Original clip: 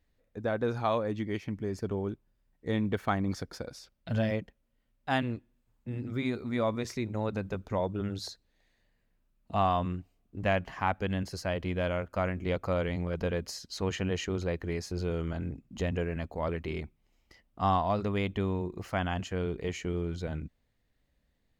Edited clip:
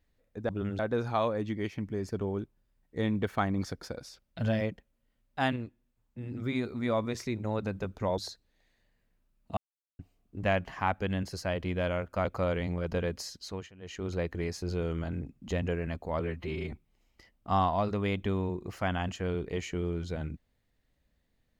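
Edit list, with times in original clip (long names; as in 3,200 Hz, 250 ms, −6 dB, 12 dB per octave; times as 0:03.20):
0:05.26–0:06.01: clip gain −3.5 dB
0:07.88–0:08.18: move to 0:00.49
0:09.57–0:09.99: silence
0:12.25–0:12.54: remove
0:13.61–0:14.47: duck −23 dB, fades 0.40 s
0:16.49–0:16.84: time-stretch 1.5×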